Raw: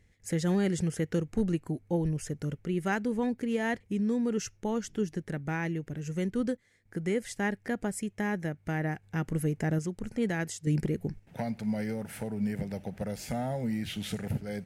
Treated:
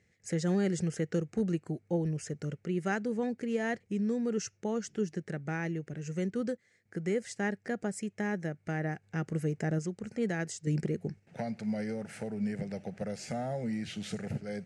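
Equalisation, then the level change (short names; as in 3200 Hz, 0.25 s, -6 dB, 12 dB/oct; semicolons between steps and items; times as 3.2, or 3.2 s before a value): dynamic EQ 2300 Hz, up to -3 dB, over -47 dBFS, Q 1.4; speaker cabinet 140–8300 Hz, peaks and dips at 270 Hz -6 dB, 970 Hz -8 dB, 3400 Hz -6 dB; 0.0 dB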